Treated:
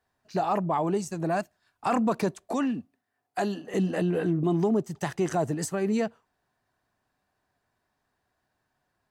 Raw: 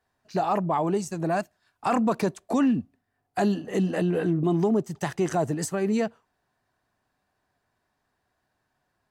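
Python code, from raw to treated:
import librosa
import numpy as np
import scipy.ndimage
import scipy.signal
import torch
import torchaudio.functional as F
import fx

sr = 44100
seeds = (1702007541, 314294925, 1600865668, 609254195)

y = fx.highpass(x, sr, hz=350.0, slope=6, at=(2.52, 3.74))
y = F.gain(torch.from_numpy(y), -1.5).numpy()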